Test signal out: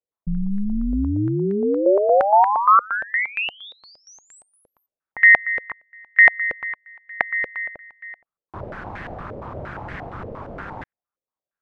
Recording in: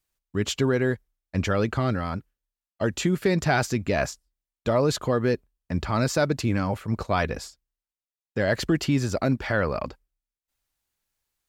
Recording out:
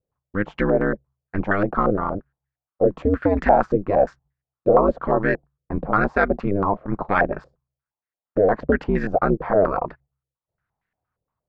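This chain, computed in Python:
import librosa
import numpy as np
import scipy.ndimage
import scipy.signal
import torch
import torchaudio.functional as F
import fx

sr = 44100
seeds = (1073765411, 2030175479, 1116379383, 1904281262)

y = x * np.sin(2.0 * np.pi * 100.0 * np.arange(len(x)) / sr)
y = fx.filter_held_lowpass(y, sr, hz=8.6, low_hz=510.0, high_hz=1800.0)
y = y * librosa.db_to_amplitude(4.0)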